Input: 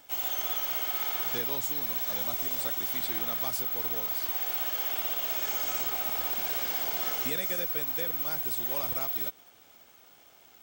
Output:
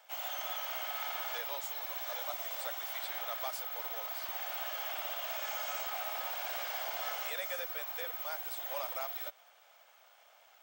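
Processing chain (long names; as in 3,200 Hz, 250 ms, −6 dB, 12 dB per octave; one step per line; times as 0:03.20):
Chebyshev high-pass filter 570 Hz, order 4
high-shelf EQ 4,000 Hz −9 dB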